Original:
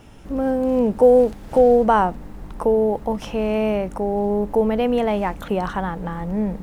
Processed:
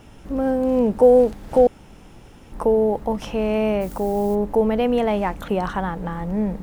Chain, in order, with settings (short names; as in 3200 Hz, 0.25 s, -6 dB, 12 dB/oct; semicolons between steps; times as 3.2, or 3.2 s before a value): 1.67–2.52 room tone; 3.8–4.34 added noise blue -46 dBFS